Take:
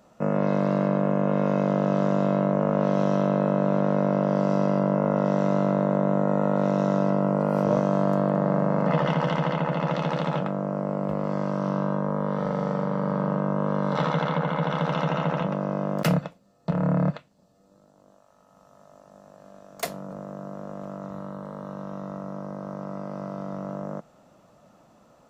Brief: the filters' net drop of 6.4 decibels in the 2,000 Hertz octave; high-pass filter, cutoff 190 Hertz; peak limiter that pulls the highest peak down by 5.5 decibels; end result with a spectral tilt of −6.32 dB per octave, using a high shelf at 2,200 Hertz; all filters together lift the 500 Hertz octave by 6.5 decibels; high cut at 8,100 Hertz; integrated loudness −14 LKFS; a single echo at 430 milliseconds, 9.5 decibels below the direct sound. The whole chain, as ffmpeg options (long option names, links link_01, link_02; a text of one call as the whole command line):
ffmpeg -i in.wav -af "highpass=190,lowpass=8100,equalizer=frequency=500:width_type=o:gain=8.5,equalizer=frequency=2000:width_type=o:gain=-8,highshelf=frequency=2200:gain=-3.5,alimiter=limit=-11dB:level=0:latency=1,aecho=1:1:430:0.335,volume=9.5dB" out.wav